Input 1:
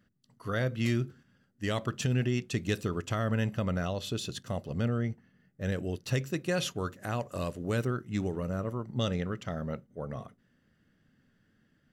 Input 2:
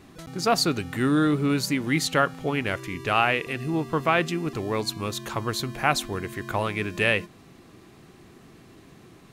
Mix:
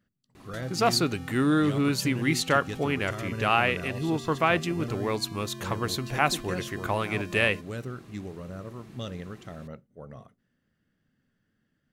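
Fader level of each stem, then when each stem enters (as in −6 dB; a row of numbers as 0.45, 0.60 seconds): −6.0, −1.5 decibels; 0.00, 0.35 seconds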